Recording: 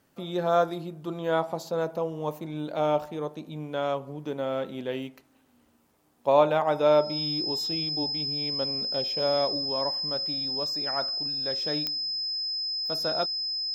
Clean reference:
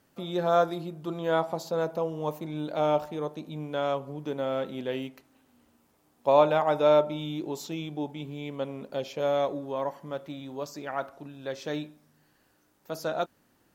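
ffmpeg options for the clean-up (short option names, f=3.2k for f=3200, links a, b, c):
-af "adeclick=t=4,bandreject=f=5.1k:w=30"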